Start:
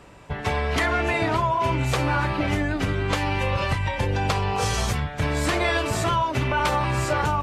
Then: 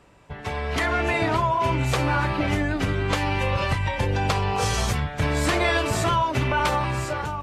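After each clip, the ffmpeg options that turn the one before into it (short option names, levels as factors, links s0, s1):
-af "dynaudnorm=f=130:g=11:m=2.82,volume=0.447"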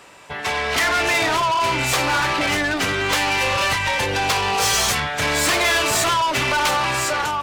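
-filter_complex "[0:a]asplit=2[s0][s1];[s1]highpass=f=720:p=1,volume=12.6,asoftclip=type=tanh:threshold=0.335[s2];[s0][s2]amix=inputs=2:normalize=0,lowpass=f=3200:p=1,volume=0.501,crystalizer=i=3.5:c=0,volume=0.596"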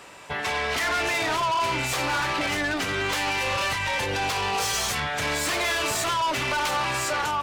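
-af "alimiter=limit=0.0944:level=0:latency=1:release=307"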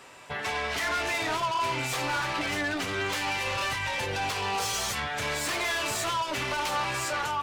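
-af "flanger=delay=7.7:depth=2.8:regen=-47:speed=0.53:shape=sinusoidal"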